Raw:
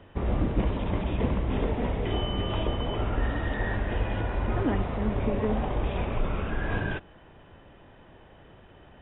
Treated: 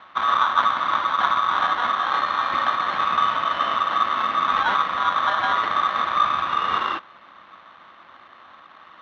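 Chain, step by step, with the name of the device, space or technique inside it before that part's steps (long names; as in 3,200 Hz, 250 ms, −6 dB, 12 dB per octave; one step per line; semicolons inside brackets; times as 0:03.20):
ring modulator pedal into a guitar cabinet (ring modulator with a square carrier 1,200 Hz; loudspeaker in its box 79–3,400 Hz, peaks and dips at 130 Hz −8 dB, 430 Hz −8 dB, 1,100 Hz +5 dB)
level +3.5 dB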